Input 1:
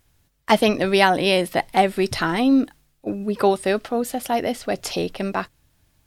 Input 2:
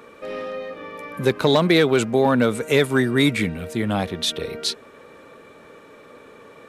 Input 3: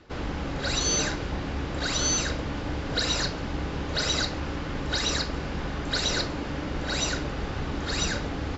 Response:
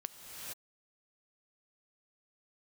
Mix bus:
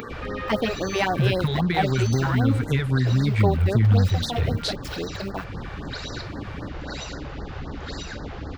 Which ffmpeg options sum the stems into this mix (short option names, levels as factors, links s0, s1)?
-filter_complex "[0:a]aeval=exprs='val(0)*gte(abs(val(0)),0.0316)':c=same,volume=0.501[s0];[1:a]asubboost=boost=7.5:cutoff=160,acompressor=threshold=0.0708:ratio=6,equalizer=f=100:t=o:w=0.67:g=9,equalizer=f=630:t=o:w=0.67:g=-11,equalizer=f=1600:t=o:w=0.67:g=4,volume=1.33[s1];[2:a]alimiter=limit=0.141:level=0:latency=1:release=320,volume=0.531[s2];[s0][s1][s2]amix=inputs=3:normalize=0,equalizer=f=10000:t=o:w=1.5:g=-11.5,acompressor=mode=upward:threshold=0.0501:ratio=2.5,afftfilt=real='re*(1-between(b*sr/1024,210*pow(2900/210,0.5+0.5*sin(2*PI*3.8*pts/sr))/1.41,210*pow(2900/210,0.5+0.5*sin(2*PI*3.8*pts/sr))*1.41))':imag='im*(1-between(b*sr/1024,210*pow(2900/210,0.5+0.5*sin(2*PI*3.8*pts/sr))/1.41,210*pow(2900/210,0.5+0.5*sin(2*PI*3.8*pts/sr))*1.41))':win_size=1024:overlap=0.75"